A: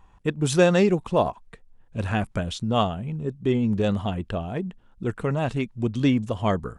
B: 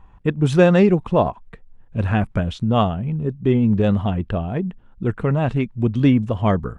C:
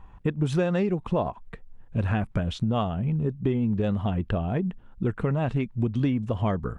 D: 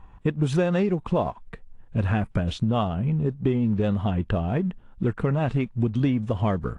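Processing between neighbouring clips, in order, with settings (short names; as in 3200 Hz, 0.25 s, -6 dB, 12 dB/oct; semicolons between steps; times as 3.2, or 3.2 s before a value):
tone controls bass +4 dB, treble -13 dB; gain +3.5 dB
compressor 5:1, threshold -22 dBFS, peak gain reduction 13 dB
in parallel at -11 dB: crossover distortion -42 dBFS; on the sum: AAC 48 kbps 24000 Hz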